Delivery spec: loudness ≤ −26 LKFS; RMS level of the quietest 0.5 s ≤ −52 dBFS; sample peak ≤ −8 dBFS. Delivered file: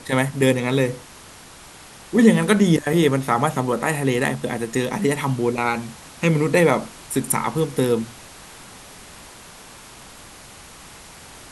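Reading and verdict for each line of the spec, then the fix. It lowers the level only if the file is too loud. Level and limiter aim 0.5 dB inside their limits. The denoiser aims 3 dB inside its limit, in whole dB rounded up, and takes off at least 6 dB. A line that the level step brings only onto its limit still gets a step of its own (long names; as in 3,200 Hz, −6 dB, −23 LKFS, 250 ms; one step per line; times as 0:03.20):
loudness −20.5 LKFS: out of spec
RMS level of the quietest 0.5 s −43 dBFS: out of spec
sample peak −2.5 dBFS: out of spec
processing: broadband denoise 6 dB, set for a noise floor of −43 dBFS
level −6 dB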